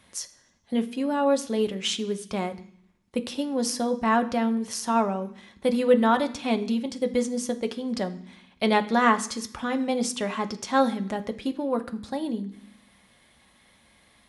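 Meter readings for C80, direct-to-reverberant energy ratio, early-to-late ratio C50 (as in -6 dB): 18.0 dB, 6.5 dB, 15.0 dB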